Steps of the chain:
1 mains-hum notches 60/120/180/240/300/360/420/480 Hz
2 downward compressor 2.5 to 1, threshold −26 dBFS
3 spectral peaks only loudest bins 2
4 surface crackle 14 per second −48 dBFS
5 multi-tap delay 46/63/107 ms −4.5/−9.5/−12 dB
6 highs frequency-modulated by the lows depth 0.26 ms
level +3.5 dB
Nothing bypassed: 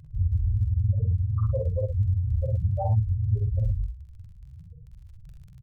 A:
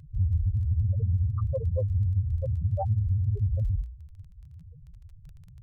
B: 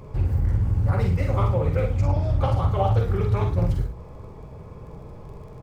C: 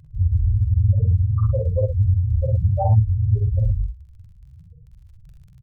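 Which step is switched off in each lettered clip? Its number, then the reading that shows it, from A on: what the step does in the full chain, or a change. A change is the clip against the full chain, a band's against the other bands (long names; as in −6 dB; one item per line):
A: 5, change in crest factor −2.0 dB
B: 3, 125 Hz band −9.0 dB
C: 2, average gain reduction 4.0 dB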